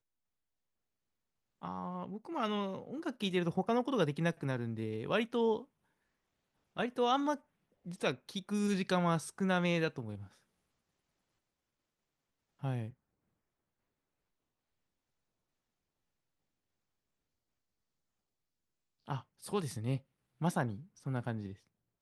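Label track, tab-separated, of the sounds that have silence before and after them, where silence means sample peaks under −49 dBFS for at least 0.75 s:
1.620000	5.640000	sound
6.770000	10.270000	sound
12.630000	12.900000	sound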